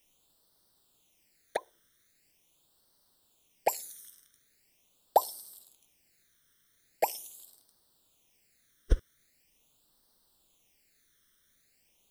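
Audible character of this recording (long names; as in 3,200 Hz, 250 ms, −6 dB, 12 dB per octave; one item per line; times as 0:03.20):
a quantiser's noise floor 12 bits, dither triangular
phaser sweep stages 12, 0.42 Hz, lowest notch 800–2,400 Hz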